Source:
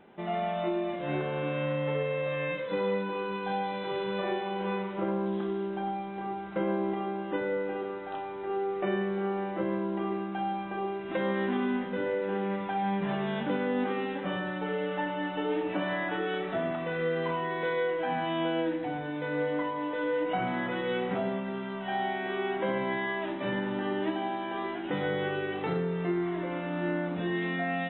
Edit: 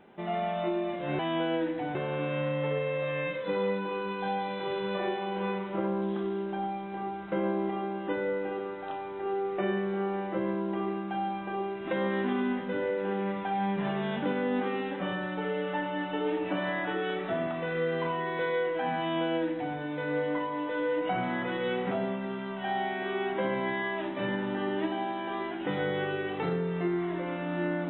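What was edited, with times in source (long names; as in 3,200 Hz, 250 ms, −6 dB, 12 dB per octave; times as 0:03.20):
0:18.24–0:19.00: duplicate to 0:01.19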